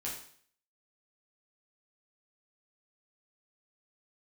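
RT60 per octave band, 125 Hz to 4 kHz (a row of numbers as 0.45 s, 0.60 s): 0.55 s, 0.55 s, 0.55 s, 0.55 s, 0.55 s, 0.55 s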